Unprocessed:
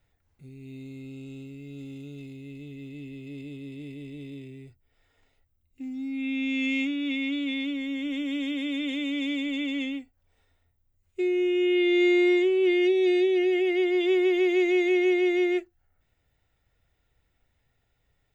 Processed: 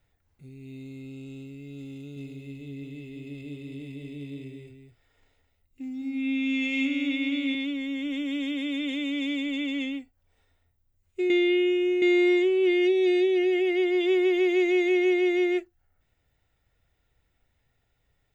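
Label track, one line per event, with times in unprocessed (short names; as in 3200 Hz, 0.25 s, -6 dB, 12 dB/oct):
1.950000	7.550000	echo 0.213 s -6 dB
11.300000	12.020000	reverse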